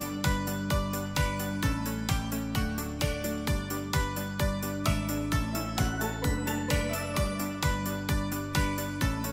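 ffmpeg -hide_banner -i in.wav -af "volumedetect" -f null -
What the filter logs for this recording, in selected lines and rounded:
mean_volume: -29.9 dB
max_volume: -13.7 dB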